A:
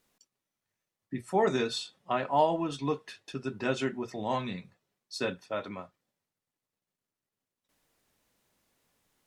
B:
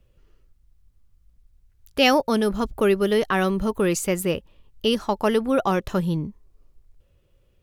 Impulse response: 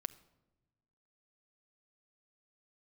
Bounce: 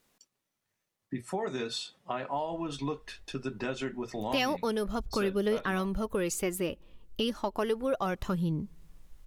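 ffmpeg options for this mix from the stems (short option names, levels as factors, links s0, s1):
-filter_complex "[0:a]alimiter=limit=0.0891:level=0:latency=1:release=446,volume=1.41[s0];[1:a]aphaser=in_gain=1:out_gain=1:delay=4.3:decay=0.37:speed=0.32:type=triangular,adelay=2350,volume=0.75,asplit=2[s1][s2];[s2]volume=0.1[s3];[2:a]atrim=start_sample=2205[s4];[s3][s4]afir=irnorm=-1:irlink=0[s5];[s0][s1][s5]amix=inputs=3:normalize=0,acompressor=threshold=0.0224:ratio=2"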